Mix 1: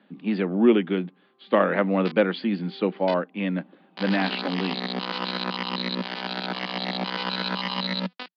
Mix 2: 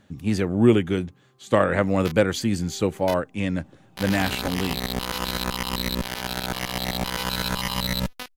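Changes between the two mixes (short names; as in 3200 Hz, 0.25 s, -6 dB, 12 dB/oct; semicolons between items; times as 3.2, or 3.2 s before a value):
speech: remove LPF 3700 Hz 24 dB/oct; master: remove Chebyshev band-pass 180–4700 Hz, order 5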